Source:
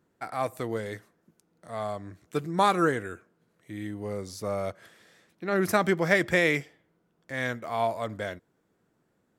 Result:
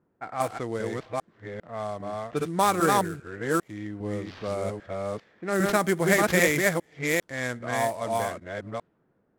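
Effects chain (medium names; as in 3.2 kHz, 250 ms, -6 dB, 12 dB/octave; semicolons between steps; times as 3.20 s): chunks repeated in reverse 400 ms, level -1 dB; sample-rate reducer 9.3 kHz, jitter 20%; level-controlled noise filter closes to 1.4 kHz, open at -22.5 dBFS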